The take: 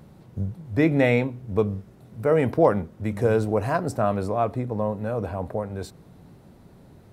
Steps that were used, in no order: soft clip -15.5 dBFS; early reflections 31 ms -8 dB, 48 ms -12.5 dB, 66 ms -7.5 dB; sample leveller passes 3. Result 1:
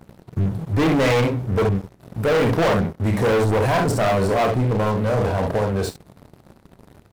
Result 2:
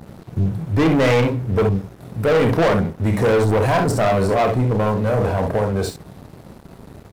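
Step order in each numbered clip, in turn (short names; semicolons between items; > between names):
early reflections > sample leveller > soft clip; soft clip > early reflections > sample leveller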